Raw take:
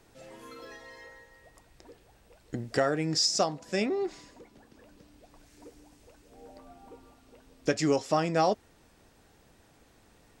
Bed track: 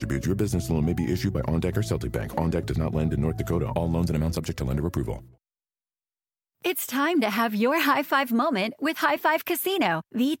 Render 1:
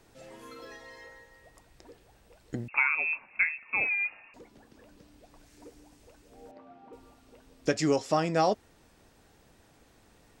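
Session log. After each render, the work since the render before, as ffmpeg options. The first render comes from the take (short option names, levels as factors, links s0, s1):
-filter_complex "[0:a]asettb=1/sr,asplit=3[s0][s1][s2];[s0]atrim=end=2.684[s3];[s1]atrim=start=2.68:end=4.34,asetpts=PTS-STARTPTS,afade=t=in:d=0.004:c=qsin,afade=t=out:st=1.656:d=0.004:c=qsin,lowpass=f=2400:t=q:w=0.5098,lowpass=f=2400:t=q:w=0.6013,lowpass=f=2400:t=q:w=0.9,lowpass=f=2400:t=q:w=2.563,afreqshift=-2800[s4];[s2]atrim=start=4.336[s5];[s3][s4]acrossfade=d=0.004:c1=hsin:c2=qsin[s6];[s6][s5]acrossfade=d=0.004:c1=qsin:c2=hsin,asettb=1/sr,asplit=3[s7][s8][s9];[s7]atrim=end=6.514[s10];[s8]atrim=start=6.51:end=6.93,asetpts=PTS-STARTPTS,afade=t=in:d=0.004:c=qsin,afade=t=out:st=0.416:d=0.004:c=qsin,highpass=150,lowpass=2700[s11];[s9]atrim=start=6.926[s12];[s10][s11]acrossfade=d=0.004:c1=hsin:c2=qsin[s13];[s13][s12]acrossfade=d=0.004:c1=qsin:c2=hsin"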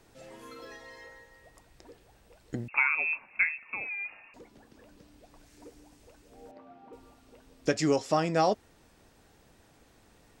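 -filter_complex "[0:a]asettb=1/sr,asplit=3[s0][s1][s2];[s0]atrim=end=3.684[s3];[s1]atrim=start=3.68:end=4.09,asetpts=PTS-STARTPTS,afade=t=in:d=0.004:c=qsin,afade=t=out:st=0.406:d=0.004:c=qsin,acrossover=split=820|2000[s4][s5][s6];[s4]acompressor=threshold=0.00398:ratio=4[s7];[s5]acompressor=threshold=0.00708:ratio=4[s8];[s6]acompressor=threshold=0.01:ratio=4[s9];[s7][s8][s9]amix=inputs=3:normalize=0[s10];[s2]atrim=start=4.086[s11];[s3][s10]acrossfade=d=0.004:c1=hsin:c2=qsin[s12];[s12][s11]acrossfade=d=0.004:c1=qsin:c2=hsin"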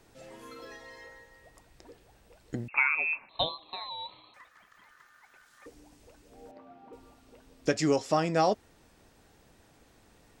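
-filter_complex "[0:a]asettb=1/sr,asplit=3[s0][s1][s2];[s0]atrim=end=3.294[s3];[s1]atrim=start=3.29:end=5.66,asetpts=PTS-STARTPTS,afade=t=in:d=0.004:c=qsin,afade=t=out:st=2.366:d=0.004:c=qsin,aeval=exprs='val(0)*sin(2*PI*1500*n/s)':c=same[s4];[s2]atrim=start=5.656[s5];[s3][s4]acrossfade=d=0.004:c1=hsin:c2=qsin[s6];[s6][s5]acrossfade=d=0.004:c1=qsin:c2=hsin"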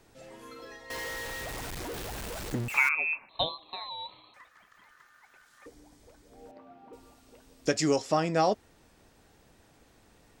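-filter_complex "[0:a]asettb=1/sr,asplit=3[s0][s1][s2];[s0]atrim=end=0.904[s3];[s1]atrim=start=0.9:end=2.89,asetpts=PTS-STARTPTS,afade=t=in:d=0.004:c=qsin,afade=t=out:st=1.986:d=0.004:c=qsin,aeval=exprs='val(0)+0.5*0.0237*sgn(val(0))':c=same[s4];[s2]atrim=start=2.886[s5];[s3][s4]acrossfade=d=0.004:c1=hsin:c2=qsin[s6];[s6][s5]acrossfade=d=0.004:c1=qsin:c2=hsin,asettb=1/sr,asplit=3[s7][s8][s9];[s7]atrim=end=5.684[s10];[s8]atrim=start=5.68:end=6.41,asetpts=PTS-STARTPTS,afade=t=in:d=0.004:c=qsin,afade=t=out:st=0.726:d=0.004:c=qsin,bandreject=f=2700:w=7.4[s11];[s9]atrim=start=6.406[s12];[s10][s11]acrossfade=d=0.004:c1=hsin:c2=qsin[s13];[s13][s12]acrossfade=d=0.004:c1=qsin:c2=hsin,asettb=1/sr,asplit=3[s14][s15][s16];[s14]atrim=end=6.934[s17];[s15]atrim=start=6.93:end=8.02,asetpts=PTS-STARTPTS,afade=t=in:d=0.004:c=qsin,afade=t=out:st=1.086:d=0.004:c=qsin,bass=f=250:g=-1,treble=f=4000:g=5[s18];[s16]atrim=start=8.016[s19];[s17][s18]acrossfade=d=0.004:c1=hsin:c2=qsin[s20];[s20][s19]acrossfade=d=0.004:c1=qsin:c2=hsin"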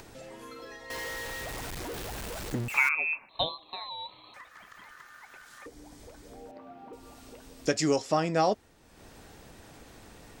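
-af "acompressor=mode=upward:threshold=0.01:ratio=2.5"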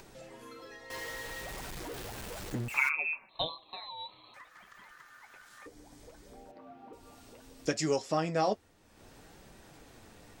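-af "flanger=delay=5.1:depth=5:regen=-46:speed=0.63:shape=sinusoidal"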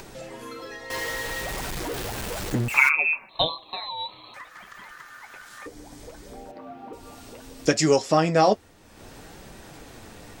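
-af "volume=3.35"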